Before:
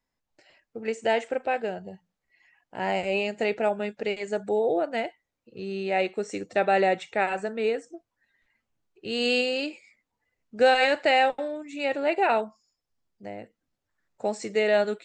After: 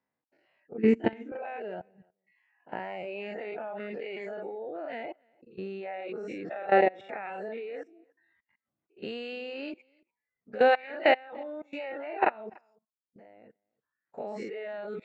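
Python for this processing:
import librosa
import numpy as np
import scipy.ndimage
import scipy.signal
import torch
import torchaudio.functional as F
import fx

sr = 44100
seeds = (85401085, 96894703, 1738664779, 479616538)

p1 = fx.spec_dilate(x, sr, span_ms=120)
p2 = fx.bandpass_edges(p1, sr, low_hz=150.0, high_hz=2200.0)
p3 = fx.low_shelf_res(p2, sr, hz=420.0, db=12.0, q=3.0, at=(0.78, 1.32))
p4 = fx.level_steps(p3, sr, step_db=17)
p5 = p4 + fx.echo_single(p4, sr, ms=291, db=-20.5, dry=0)
p6 = fx.dereverb_blind(p5, sr, rt60_s=0.82)
y = F.gain(torch.from_numpy(p6), -1.5).numpy()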